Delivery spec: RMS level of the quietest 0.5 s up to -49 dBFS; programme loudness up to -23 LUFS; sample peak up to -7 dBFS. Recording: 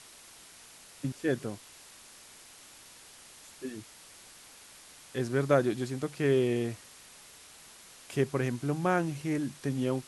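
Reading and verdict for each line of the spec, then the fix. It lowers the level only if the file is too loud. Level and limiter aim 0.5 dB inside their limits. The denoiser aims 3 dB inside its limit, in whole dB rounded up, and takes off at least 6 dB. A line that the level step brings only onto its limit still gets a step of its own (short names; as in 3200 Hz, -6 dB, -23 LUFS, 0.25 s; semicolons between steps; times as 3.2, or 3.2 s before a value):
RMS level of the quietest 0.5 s -53 dBFS: OK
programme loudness -31.0 LUFS: OK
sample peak -12.0 dBFS: OK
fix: none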